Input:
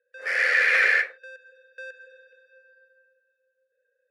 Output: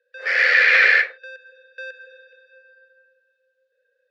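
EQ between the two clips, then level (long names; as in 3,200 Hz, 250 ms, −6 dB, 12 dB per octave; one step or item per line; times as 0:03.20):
Butterworth high-pass 310 Hz 36 dB per octave
low-pass with resonance 4,200 Hz, resonance Q 1.8
+4.0 dB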